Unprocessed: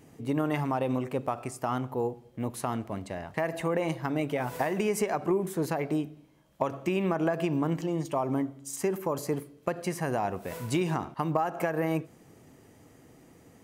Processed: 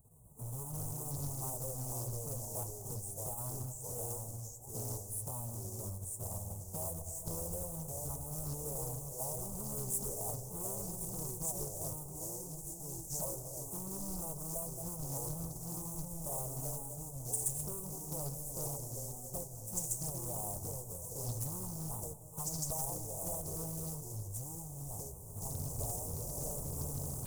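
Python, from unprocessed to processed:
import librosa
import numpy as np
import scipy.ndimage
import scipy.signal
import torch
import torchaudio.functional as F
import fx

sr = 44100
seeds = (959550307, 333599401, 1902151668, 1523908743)

p1 = fx.halfwave_hold(x, sr)
p2 = fx.recorder_agc(p1, sr, target_db=-22.5, rise_db_per_s=29.0, max_gain_db=30)
p3 = scipy.signal.sosfilt(scipy.signal.ellip(3, 1.0, 40, [900.0, 8500.0], 'bandstop', fs=sr, output='sos'), p2)
p4 = fx.band_shelf(p3, sr, hz=1500.0, db=-9.0, octaves=2.6)
p5 = fx.comb_fb(p4, sr, f0_hz=89.0, decay_s=1.1, harmonics='odd', damping=0.0, mix_pct=30)
p6 = fx.stretch_vocoder_free(p5, sr, factor=2.0)
p7 = fx.rev_freeverb(p6, sr, rt60_s=2.0, hf_ratio=0.45, predelay_ms=120, drr_db=13.0)
p8 = fx.level_steps(p7, sr, step_db=18)
p9 = p7 + F.gain(torch.from_numpy(p8), 0.0).numpy()
p10 = fx.tone_stack(p9, sr, knobs='10-0-10')
p11 = fx.echo_pitch(p10, sr, ms=312, semitones=-2, count=2, db_per_echo=-3.0)
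y = fx.doppler_dist(p11, sr, depth_ms=0.66)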